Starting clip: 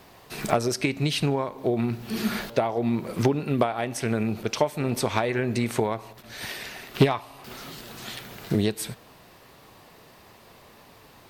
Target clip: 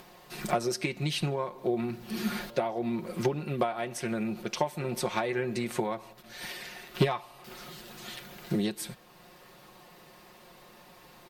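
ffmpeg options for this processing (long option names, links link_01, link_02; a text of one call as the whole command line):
ffmpeg -i in.wav -af "equalizer=frequency=83:width_type=o:width=0.47:gain=-14,aecho=1:1:5.6:0.65,acompressor=mode=upward:threshold=-41dB:ratio=2.5,volume=-6.5dB" out.wav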